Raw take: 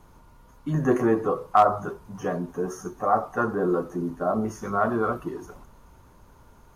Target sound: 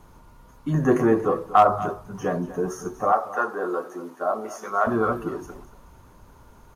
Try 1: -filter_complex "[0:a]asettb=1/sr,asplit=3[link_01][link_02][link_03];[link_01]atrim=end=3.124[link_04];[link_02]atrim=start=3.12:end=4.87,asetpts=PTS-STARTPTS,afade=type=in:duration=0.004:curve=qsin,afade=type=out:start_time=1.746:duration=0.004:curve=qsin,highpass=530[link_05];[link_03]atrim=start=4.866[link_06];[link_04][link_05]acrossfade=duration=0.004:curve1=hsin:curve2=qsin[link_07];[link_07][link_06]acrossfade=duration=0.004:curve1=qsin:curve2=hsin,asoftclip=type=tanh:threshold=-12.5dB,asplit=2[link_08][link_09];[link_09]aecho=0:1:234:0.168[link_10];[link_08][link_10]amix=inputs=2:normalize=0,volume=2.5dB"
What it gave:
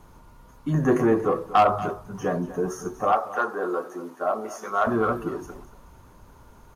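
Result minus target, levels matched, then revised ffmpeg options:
soft clipping: distortion +14 dB
-filter_complex "[0:a]asettb=1/sr,asplit=3[link_01][link_02][link_03];[link_01]atrim=end=3.124[link_04];[link_02]atrim=start=3.12:end=4.87,asetpts=PTS-STARTPTS,afade=type=in:duration=0.004:curve=qsin,afade=type=out:start_time=1.746:duration=0.004:curve=qsin,highpass=530[link_05];[link_03]atrim=start=4.866[link_06];[link_04][link_05]acrossfade=duration=0.004:curve1=hsin:curve2=qsin[link_07];[link_07][link_06]acrossfade=duration=0.004:curve1=qsin:curve2=hsin,asoftclip=type=tanh:threshold=-3.5dB,asplit=2[link_08][link_09];[link_09]aecho=0:1:234:0.168[link_10];[link_08][link_10]amix=inputs=2:normalize=0,volume=2.5dB"

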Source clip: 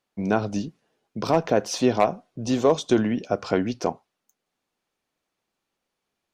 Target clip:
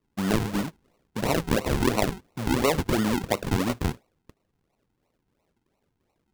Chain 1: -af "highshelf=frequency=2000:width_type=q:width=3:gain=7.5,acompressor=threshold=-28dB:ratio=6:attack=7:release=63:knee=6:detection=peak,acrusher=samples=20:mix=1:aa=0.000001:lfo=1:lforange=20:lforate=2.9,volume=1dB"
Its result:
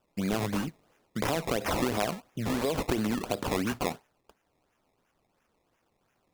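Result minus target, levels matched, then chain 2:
downward compressor: peak gain reduction +6.5 dB; sample-and-hold swept by an LFO: distortion −8 dB
-af "highshelf=frequency=2000:width_type=q:width=3:gain=7.5,acompressor=threshold=-20dB:ratio=6:attack=7:release=63:knee=6:detection=peak,acrusher=samples=52:mix=1:aa=0.000001:lfo=1:lforange=52:lforate=2.9,volume=1dB"

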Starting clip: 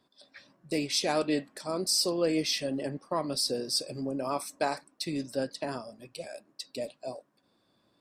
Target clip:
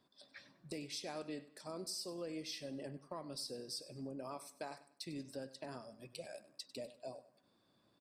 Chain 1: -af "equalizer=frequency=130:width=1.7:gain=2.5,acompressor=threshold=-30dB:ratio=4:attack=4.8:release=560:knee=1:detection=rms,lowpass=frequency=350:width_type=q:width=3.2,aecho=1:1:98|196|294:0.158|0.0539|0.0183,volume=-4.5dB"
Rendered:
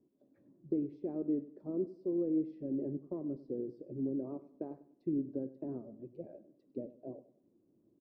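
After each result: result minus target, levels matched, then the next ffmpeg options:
250 Hz band +5.0 dB; downward compressor: peak gain reduction −5 dB
-af "equalizer=frequency=130:width=1.7:gain=2.5,acompressor=threshold=-30dB:ratio=4:attack=4.8:release=560:knee=1:detection=rms,aecho=1:1:98|196|294:0.158|0.0539|0.0183,volume=-4.5dB"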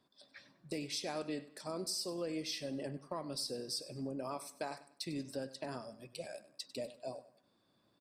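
downward compressor: peak gain reduction −5 dB
-af "equalizer=frequency=130:width=1.7:gain=2.5,acompressor=threshold=-36.5dB:ratio=4:attack=4.8:release=560:knee=1:detection=rms,aecho=1:1:98|196|294:0.158|0.0539|0.0183,volume=-4.5dB"

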